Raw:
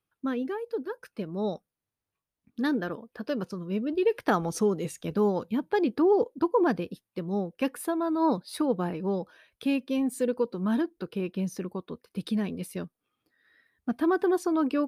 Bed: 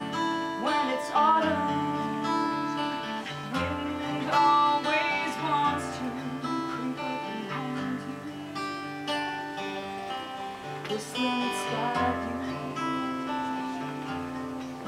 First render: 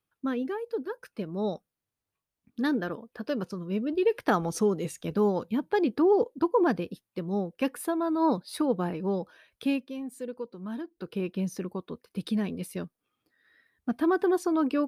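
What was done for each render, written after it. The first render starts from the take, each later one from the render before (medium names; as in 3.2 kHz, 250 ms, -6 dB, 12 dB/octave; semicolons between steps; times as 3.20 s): 9.69–11.13 s: dip -9.5 dB, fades 0.24 s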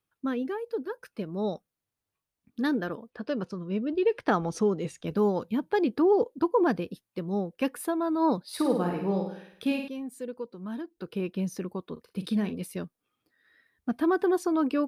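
3.10–5.07 s: distance through air 61 m; 8.47–9.88 s: flutter echo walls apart 8.9 m, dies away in 0.66 s; 11.92–12.63 s: doubling 43 ms -11.5 dB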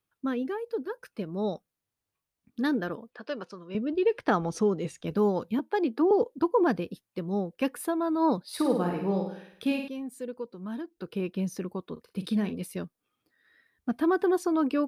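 3.14–3.75 s: frequency weighting A; 5.59–6.11 s: rippled Chebyshev high-pass 220 Hz, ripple 3 dB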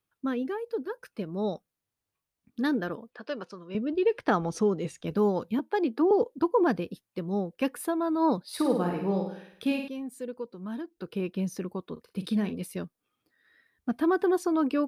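no audible change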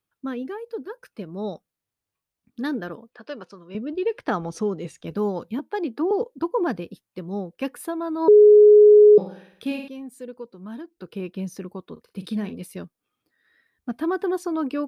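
8.28–9.18 s: bleep 419 Hz -7.5 dBFS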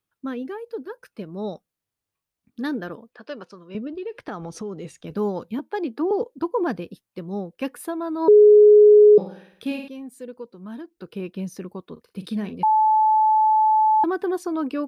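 3.87–5.10 s: compression 3:1, threshold -30 dBFS; 12.63–14.04 s: bleep 867 Hz -14 dBFS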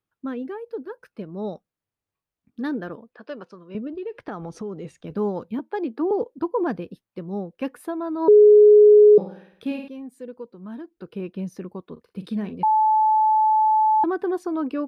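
treble shelf 3.2 kHz -10 dB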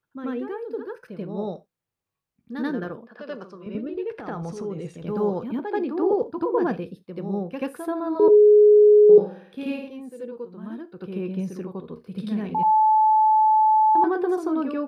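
reverse echo 85 ms -5.5 dB; gated-style reverb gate 110 ms falling, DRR 12 dB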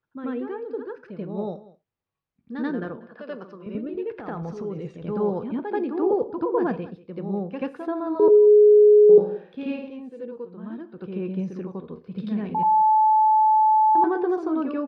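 distance through air 160 m; delay 189 ms -19 dB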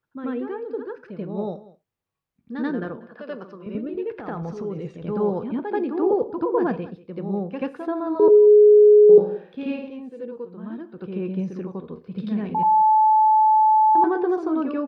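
trim +1.5 dB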